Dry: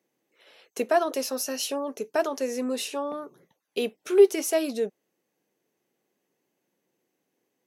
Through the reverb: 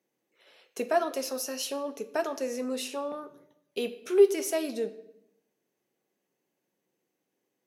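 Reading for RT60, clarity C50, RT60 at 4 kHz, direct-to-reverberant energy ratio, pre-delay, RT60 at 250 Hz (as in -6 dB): 0.80 s, 14.0 dB, 0.65 s, 10.0 dB, 5 ms, 1.0 s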